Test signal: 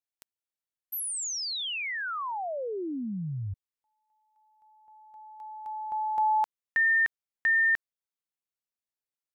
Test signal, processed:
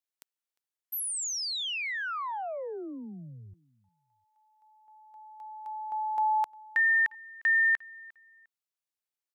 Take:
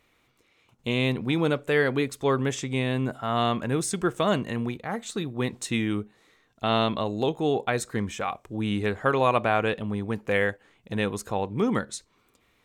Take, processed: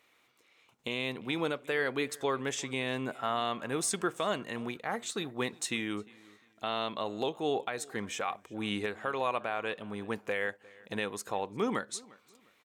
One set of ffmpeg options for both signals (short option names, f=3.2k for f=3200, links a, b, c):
-filter_complex "[0:a]highpass=f=520:p=1,alimiter=limit=-19.5dB:level=0:latency=1:release=438,asplit=2[a][b];[b]adelay=353,lowpass=f=4.8k:p=1,volume=-23dB,asplit=2[c][d];[d]adelay=353,lowpass=f=4.8k:p=1,volume=0.28[e];[c][e]amix=inputs=2:normalize=0[f];[a][f]amix=inputs=2:normalize=0"